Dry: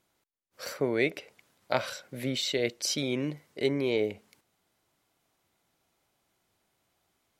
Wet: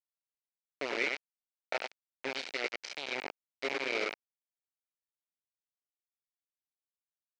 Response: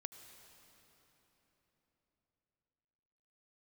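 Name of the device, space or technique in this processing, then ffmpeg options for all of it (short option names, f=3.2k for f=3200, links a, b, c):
hand-held game console: -filter_complex "[0:a]asplit=3[a][b][c];[a]afade=t=out:st=1.85:d=0.02[d];[b]equalizer=f=290:w=0.34:g=3.5,afade=t=in:st=1.85:d=0.02,afade=t=out:st=2.32:d=0.02[e];[c]afade=t=in:st=2.32:d=0.02[f];[d][e][f]amix=inputs=3:normalize=0,asplit=2[g][h];[h]adelay=96,lowpass=f=2.7k:p=1,volume=-4dB,asplit=2[i][j];[j]adelay=96,lowpass=f=2.7k:p=1,volume=0.3,asplit=2[k][l];[l]adelay=96,lowpass=f=2.7k:p=1,volume=0.3,asplit=2[m][n];[n]adelay=96,lowpass=f=2.7k:p=1,volume=0.3[o];[g][i][k][m][o]amix=inputs=5:normalize=0,acrusher=bits=3:mix=0:aa=0.000001,highpass=450,equalizer=f=1.1k:t=q:w=4:g=-8,equalizer=f=2.3k:t=q:w=4:g=7,equalizer=f=3.4k:t=q:w=4:g=-4,lowpass=f=5k:w=0.5412,lowpass=f=5k:w=1.3066,volume=-6.5dB"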